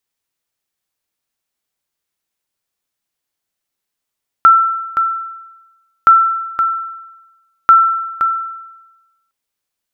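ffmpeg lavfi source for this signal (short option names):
-f lavfi -i "aevalsrc='0.891*(sin(2*PI*1340*mod(t,1.62))*exp(-6.91*mod(t,1.62)/1.1)+0.398*sin(2*PI*1340*max(mod(t,1.62)-0.52,0))*exp(-6.91*max(mod(t,1.62)-0.52,0)/1.1))':d=4.86:s=44100"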